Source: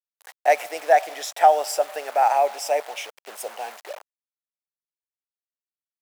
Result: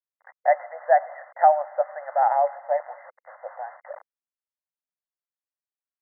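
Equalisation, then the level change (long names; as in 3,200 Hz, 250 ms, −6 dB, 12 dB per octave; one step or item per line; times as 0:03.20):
linear-phase brick-wall band-pass 500–2,100 Hz
high-frequency loss of the air 410 metres
0.0 dB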